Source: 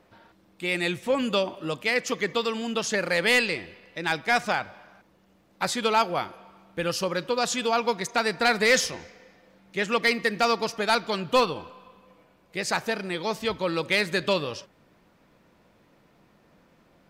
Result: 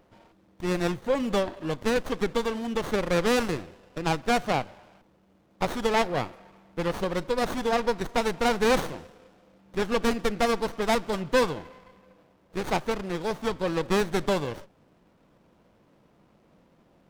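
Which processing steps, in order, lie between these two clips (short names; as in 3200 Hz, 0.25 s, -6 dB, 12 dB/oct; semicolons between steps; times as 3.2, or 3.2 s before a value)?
running maximum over 17 samples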